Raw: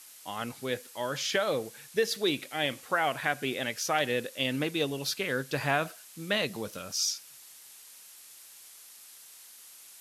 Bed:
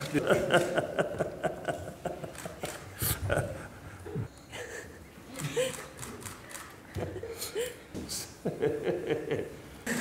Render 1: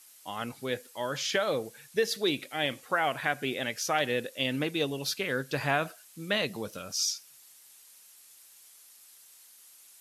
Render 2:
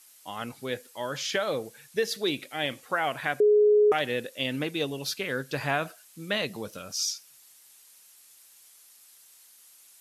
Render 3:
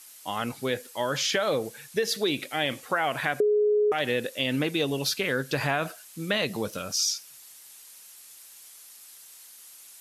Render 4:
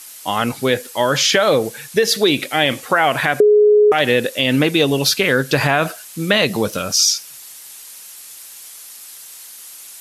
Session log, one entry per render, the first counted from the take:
noise reduction 6 dB, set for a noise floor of -52 dBFS
3.40–3.92 s: bleep 419 Hz -16 dBFS
in parallel at +0.5 dB: peak limiter -23.5 dBFS, peak gain reduction 10.5 dB; on the sum: compression, threshold -21 dBFS, peak gain reduction 6 dB
trim +11.5 dB; peak limiter -3 dBFS, peak gain reduction 3 dB

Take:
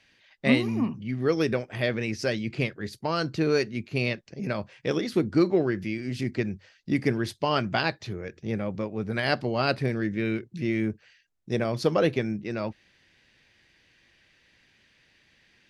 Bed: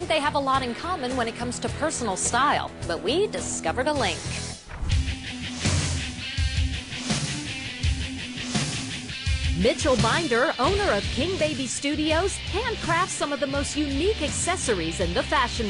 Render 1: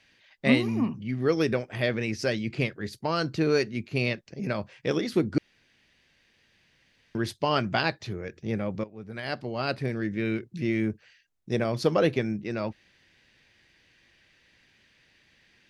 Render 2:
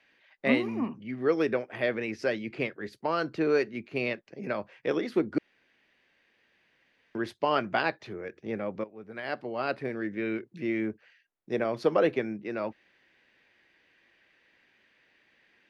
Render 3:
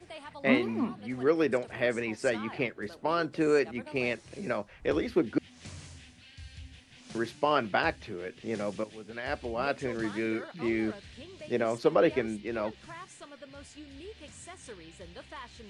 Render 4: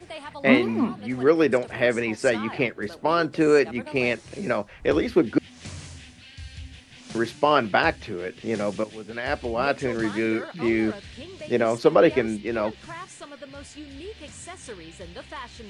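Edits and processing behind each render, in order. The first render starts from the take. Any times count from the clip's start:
5.38–7.15 s: room tone; 8.84–10.43 s: fade in, from -14 dB
three-band isolator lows -15 dB, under 240 Hz, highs -13 dB, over 2.8 kHz
add bed -22 dB
trim +7 dB

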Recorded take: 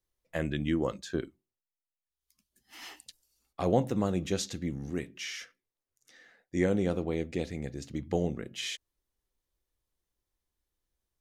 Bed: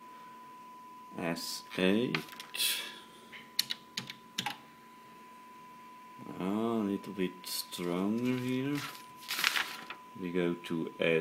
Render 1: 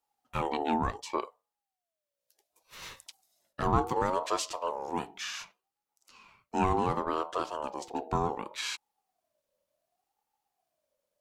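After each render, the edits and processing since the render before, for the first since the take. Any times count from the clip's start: in parallel at -4.5 dB: saturation -26 dBFS, distortion -10 dB; on the sum: ring modulator with a swept carrier 700 Hz, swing 20%, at 0.68 Hz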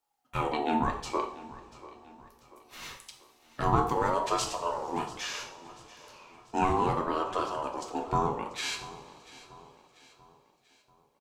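feedback delay 689 ms, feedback 47%, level -18.5 dB; two-slope reverb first 0.52 s, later 4.4 s, from -22 dB, DRR 2.5 dB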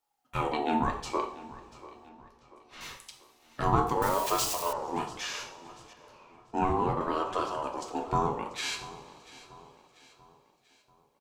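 2.09–2.81 s: distance through air 85 m; 4.02–4.73 s: zero-crossing glitches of -27 dBFS; 5.93–7.01 s: treble shelf 2.1 kHz -10 dB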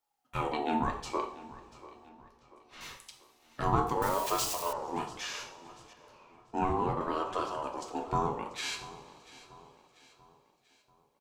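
trim -2.5 dB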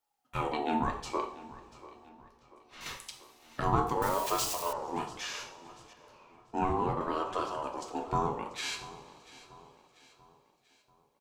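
2.86–3.60 s: gain +5.5 dB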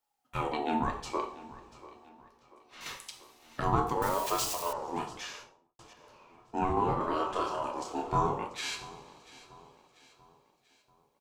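1.97–3.17 s: bass shelf 140 Hz -7.5 dB; 5.11–5.79 s: studio fade out; 6.74–8.46 s: doubling 29 ms -3 dB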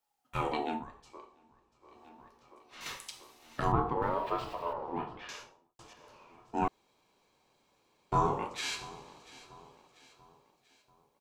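0.59–2.06 s: dip -17.5 dB, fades 0.26 s; 3.72–5.29 s: distance through air 440 m; 6.68–8.12 s: room tone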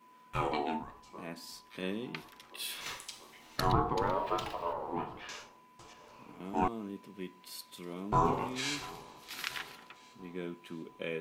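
add bed -9 dB

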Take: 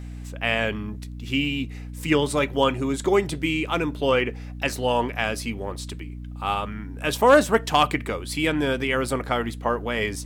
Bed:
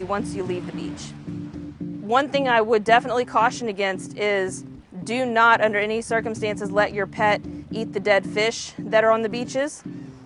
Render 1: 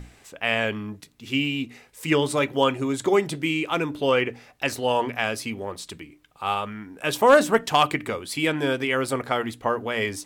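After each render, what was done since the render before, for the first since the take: hum notches 60/120/180/240/300 Hz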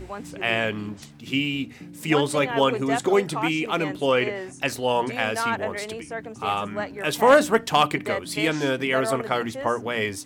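add bed -10.5 dB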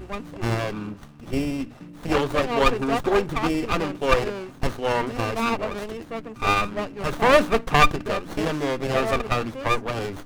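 small resonant body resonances 1.2/2.7 kHz, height 14 dB, ringing for 35 ms; sliding maximum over 17 samples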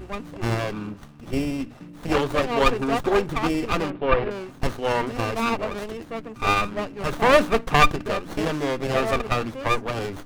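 3.90–4.31 s: Bessel low-pass 2.3 kHz, order 6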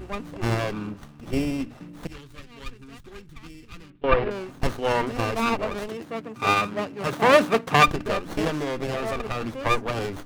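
2.07–4.04 s: amplifier tone stack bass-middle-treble 6-0-2; 5.88–7.88 s: high-pass 98 Hz 24 dB/octave; 8.49–9.57 s: compression 10:1, threshold -23 dBFS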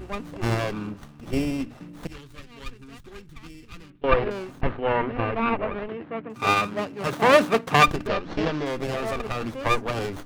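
4.61–6.30 s: low-pass 2.7 kHz 24 dB/octave; 8.07–8.66 s: low-pass 5.3 kHz 24 dB/octave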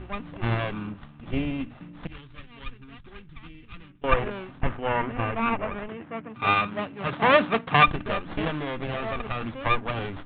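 steep low-pass 3.7 kHz 72 dB/octave; peaking EQ 420 Hz -6 dB 1.1 oct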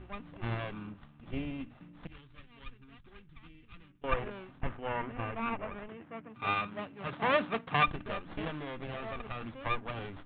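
trim -9.5 dB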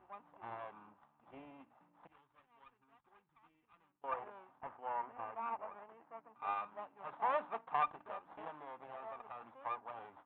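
band-pass filter 880 Hz, Q 3.1

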